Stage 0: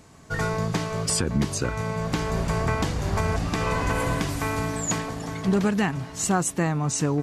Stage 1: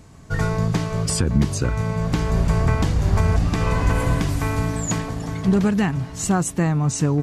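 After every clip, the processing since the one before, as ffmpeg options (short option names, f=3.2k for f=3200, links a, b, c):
-af "lowshelf=f=170:g=11"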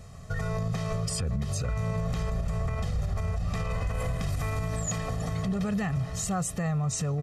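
-af "aecho=1:1:1.6:0.87,acompressor=threshold=-17dB:ratio=6,alimiter=limit=-19dB:level=0:latency=1:release=62,volume=-3dB"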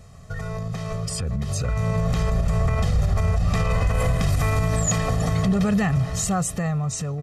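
-af "dynaudnorm=f=680:g=5:m=9dB"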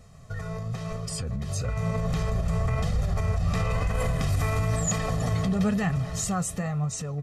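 -af "flanger=delay=3.7:depth=8.7:regen=62:speed=1:shape=triangular"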